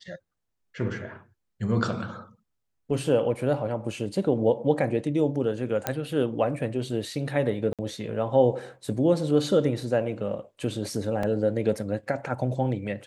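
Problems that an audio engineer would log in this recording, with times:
5.87 s: pop -9 dBFS
7.73–7.79 s: dropout 57 ms
11.23 s: dropout 3.4 ms

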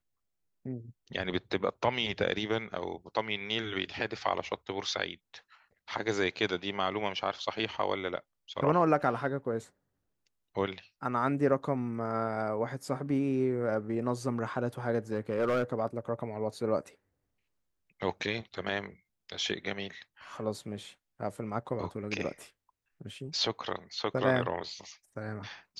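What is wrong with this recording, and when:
15.12–15.63 s: clipped -23.5 dBFS

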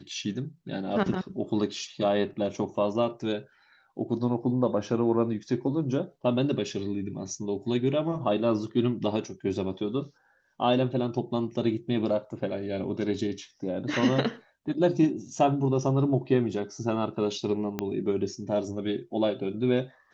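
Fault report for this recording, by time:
17.79 s: pop -15 dBFS

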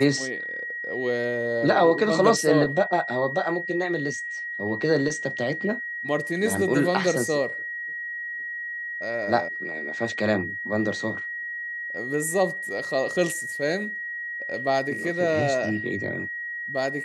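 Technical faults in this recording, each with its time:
whine 1.9 kHz -30 dBFS

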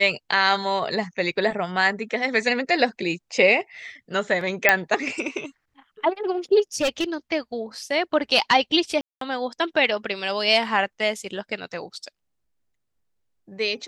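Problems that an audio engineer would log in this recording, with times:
4.69 s: pop 0 dBFS
6.76–7.15 s: clipped -18 dBFS
9.01–9.21 s: dropout 203 ms

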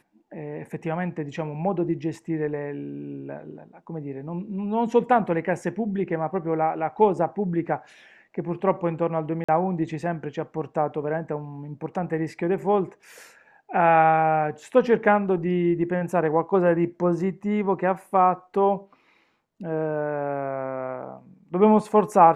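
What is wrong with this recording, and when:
9.44–9.48 s: dropout 45 ms

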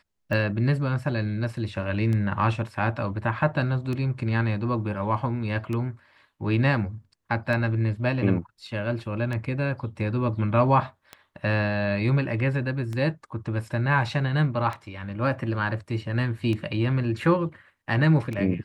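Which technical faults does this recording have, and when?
tick 33 1/3 rpm -19 dBFS

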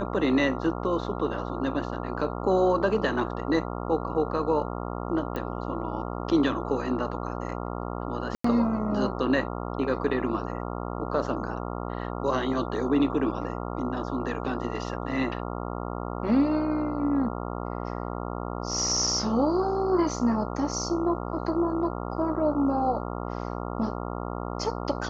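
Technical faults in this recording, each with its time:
buzz 60 Hz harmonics 23 -33 dBFS
5.36 s: pop -19 dBFS
8.35–8.44 s: dropout 94 ms

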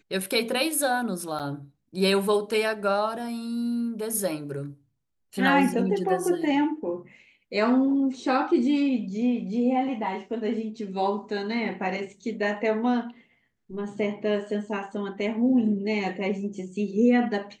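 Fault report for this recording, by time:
1.39–1.40 s: dropout 7.6 ms

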